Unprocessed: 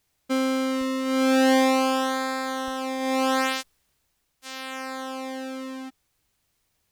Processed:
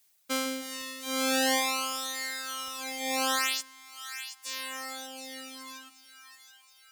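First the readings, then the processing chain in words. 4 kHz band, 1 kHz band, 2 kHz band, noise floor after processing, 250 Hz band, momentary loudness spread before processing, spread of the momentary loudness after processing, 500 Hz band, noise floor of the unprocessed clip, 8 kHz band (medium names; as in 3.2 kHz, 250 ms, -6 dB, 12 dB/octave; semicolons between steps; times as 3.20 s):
+0.5 dB, -7.5 dB, -3.0 dB, -60 dBFS, -13.5 dB, 17 LU, 18 LU, -11.0 dB, -73 dBFS, +4.0 dB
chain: tilt EQ +3.5 dB/octave; two-band feedback delay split 950 Hz, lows 155 ms, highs 725 ms, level -9.5 dB; reverb removal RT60 1.9 s; trim -3.5 dB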